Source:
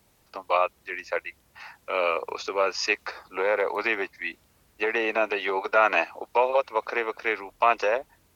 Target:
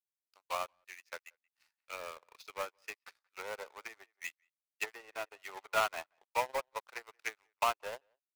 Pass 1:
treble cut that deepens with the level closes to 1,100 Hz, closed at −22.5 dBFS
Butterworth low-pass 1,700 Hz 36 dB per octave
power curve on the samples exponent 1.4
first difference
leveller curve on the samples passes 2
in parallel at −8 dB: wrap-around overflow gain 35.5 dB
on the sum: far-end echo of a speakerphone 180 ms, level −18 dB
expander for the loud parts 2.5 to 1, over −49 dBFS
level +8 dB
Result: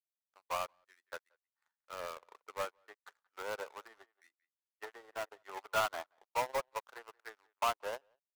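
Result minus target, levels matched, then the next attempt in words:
2,000 Hz band −3.0 dB
treble cut that deepens with the level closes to 1,100 Hz, closed at −22.5 dBFS
power curve on the samples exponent 1.4
first difference
leveller curve on the samples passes 2
in parallel at −8 dB: wrap-around overflow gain 35.5 dB
on the sum: far-end echo of a speakerphone 180 ms, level −18 dB
expander for the loud parts 2.5 to 1, over −49 dBFS
level +8 dB

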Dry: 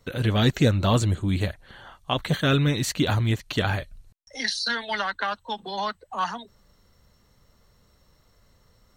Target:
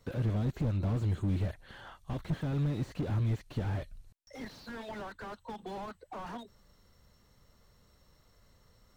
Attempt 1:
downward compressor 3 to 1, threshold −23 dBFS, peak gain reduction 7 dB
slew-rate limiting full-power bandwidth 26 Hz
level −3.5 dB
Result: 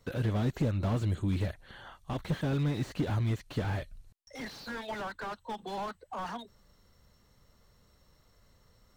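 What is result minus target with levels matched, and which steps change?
slew-rate limiting: distortion −4 dB
change: slew-rate limiting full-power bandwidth 12.5 Hz

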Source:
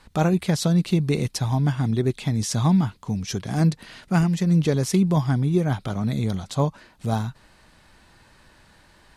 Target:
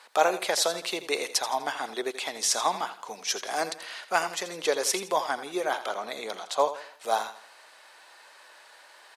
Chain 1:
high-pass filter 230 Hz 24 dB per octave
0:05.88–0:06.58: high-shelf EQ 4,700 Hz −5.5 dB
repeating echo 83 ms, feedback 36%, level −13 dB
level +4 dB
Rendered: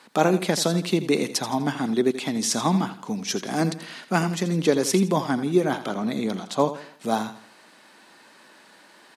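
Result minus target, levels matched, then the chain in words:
250 Hz band +13.5 dB
high-pass filter 510 Hz 24 dB per octave
0:05.88–0:06.58: high-shelf EQ 4,700 Hz −5.5 dB
repeating echo 83 ms, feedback 36%, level −13 dB
level +4 dB

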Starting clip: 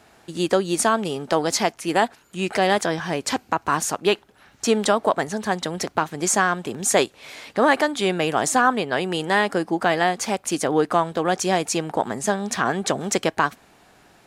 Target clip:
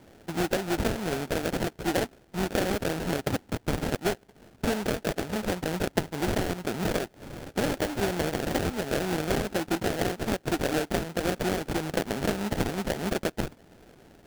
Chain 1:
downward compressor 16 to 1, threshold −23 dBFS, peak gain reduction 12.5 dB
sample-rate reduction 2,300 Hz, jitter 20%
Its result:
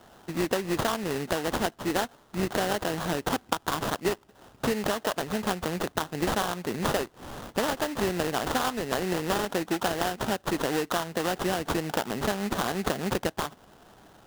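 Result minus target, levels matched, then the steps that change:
sample-rate reduction: distortion −10 dB
change: sample-rate reduction 1,100 Hz, jitter 20%

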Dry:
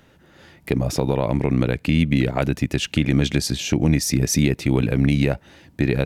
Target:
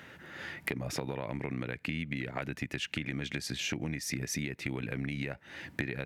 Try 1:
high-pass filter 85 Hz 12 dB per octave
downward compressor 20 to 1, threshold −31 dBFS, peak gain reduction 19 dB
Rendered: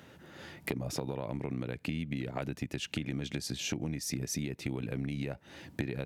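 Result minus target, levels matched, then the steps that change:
2,000 Hz band −6.0 dB
add after high-pass filter: parametric band 1,900 Hz +10.5 dB 1.2 octaves

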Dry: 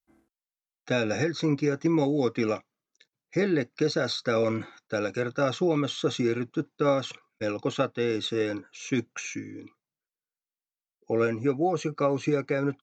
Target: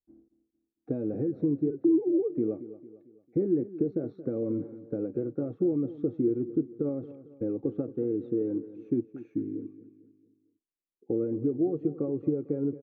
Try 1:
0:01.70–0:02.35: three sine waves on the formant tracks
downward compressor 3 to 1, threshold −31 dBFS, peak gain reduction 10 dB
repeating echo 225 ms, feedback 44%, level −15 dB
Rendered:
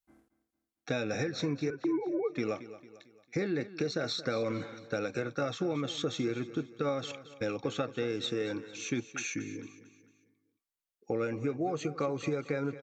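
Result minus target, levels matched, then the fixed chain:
250 Hz band −3.0 dB
0:01.70–0:02.35: three sine waves on the formant tracks
downward compressor 3 to 1, threshold −31 dBFS, peak gain reduction 10 dB
low-pass with resonance 350 Hz, resonance Q 2.5
repeating echo 225 ms, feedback 44%, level −15 dB

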